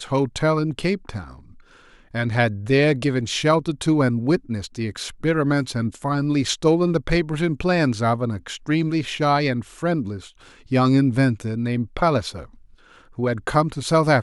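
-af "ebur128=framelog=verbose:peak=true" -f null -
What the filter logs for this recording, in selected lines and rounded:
Integrated loudness:
  I:         -21.5 LUFS
  Threshold: -32.1 LUFS
Loudness range:
  LRA:         1.6 LU
  Threshold: -41.9 LUFS
  LRA low:   -22.8 LUFS
  LRA high:  -21.1 LUFS
True peak:
  Peak:       -4.4 dBFS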